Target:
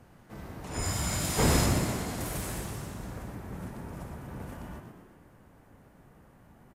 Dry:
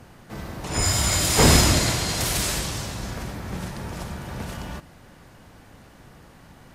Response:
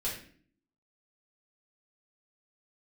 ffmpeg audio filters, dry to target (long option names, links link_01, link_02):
-filter_complex "[0:a]asetnsamples=nb_out_samples=441:pad=0,asendcmd='1.66 equalizer g -12',equalizer=frequency=4400:width=0.65:gain=-5.5,asplit=7[link_01][link_02][link_03][link_04][link_05][link_06][link_07];[link_02]adelay=120,afreqshift=58,volume=-7dB[link_08];[link_03]adelay=240,afreqshift=116,volume=-12.5dB[link_09];[link_04]adelay=360,afreqshift=174,volume=-18dB[link_10];[link_05]adelay=480,afreqshift=232,volume=-23.5dB[link_11];[link_06]adelay=600,afreqshift=290,volume=-29.1dB[link_12];[link_07]adelay=720,afreqshift=348,volume=-34.6dB[link_13];[link_01][link_08][link_09][link_10][link_11][link_12][link_13]amix=inputs=7:normalize=0,volume=-8.5dB"